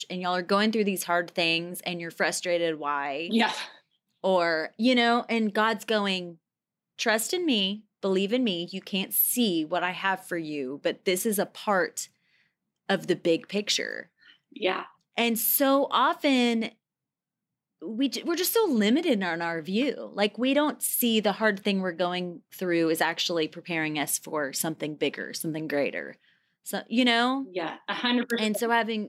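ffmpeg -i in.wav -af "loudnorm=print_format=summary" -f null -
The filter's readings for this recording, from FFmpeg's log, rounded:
Input Integrated:    -26.4 LUFS
Input True Peak:     -11.4 dBTP
Input LRA:             2.8 LU
Input Threshold:     -36.8 LUFS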